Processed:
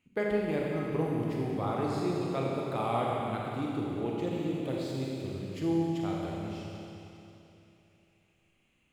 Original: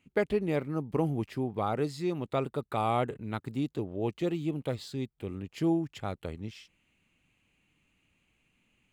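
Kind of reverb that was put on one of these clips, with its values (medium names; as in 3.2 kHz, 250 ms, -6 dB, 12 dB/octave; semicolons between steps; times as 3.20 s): Schroeder reverb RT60 3.1 s, combs from 30 ms, DRR -3.5 dB; trim -5 dB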